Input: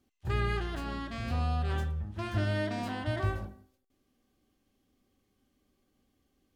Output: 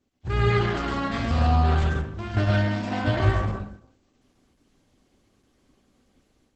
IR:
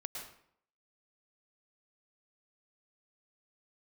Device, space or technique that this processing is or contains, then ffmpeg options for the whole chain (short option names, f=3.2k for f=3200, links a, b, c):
speakerphone in a meeting room: -filter_complex "[0:a]asettb=1/sr,asplit=3[a][b][c];[a]atrim=end=1.914[d];[b]atrim=start=1.91:end=2.92,asetpts=PTS-STARTPTS,afade=t=in:d=0.004:c=qsin,afade=t=out:st=1.006:d=0.004:c=qsin,agate=range=-6dB:threshold=-29dB:ratio=16:detection=peak[e];[c]atrim=start=2.916[f];[d][e]acrossfade=d=0.004:c1=hsin:c2=qsin[g];[g][f]acrossfade=d=0.004:c1=qsin:c2=hsin[h];[1:a]atrim=start_sample=2205[i];[h][i]afir=irnorm=-1:irlink=0,dynaudnorm=f=230:g=3:m=8dB,volume=4dB" -ar 48000 -c:a libopus -b:a 12k